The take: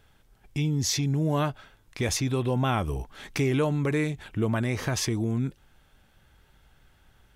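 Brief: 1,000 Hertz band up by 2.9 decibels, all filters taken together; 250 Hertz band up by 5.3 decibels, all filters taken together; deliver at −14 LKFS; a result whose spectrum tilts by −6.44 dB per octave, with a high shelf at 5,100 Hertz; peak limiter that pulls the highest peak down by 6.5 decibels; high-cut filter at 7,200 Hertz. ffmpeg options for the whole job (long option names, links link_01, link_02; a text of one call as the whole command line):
ffmpeg -i in.wav -af "lowpass=7200,equalizer=frequency=250:width_type=o:gain=6.5,equalizer=frequency=1000:width_type=o:gain=3.5,highshelf=frequency=5100:gain=-3.5,volume=13dB,alimiter=limit=-5dB:level=0:latency=1" out.wav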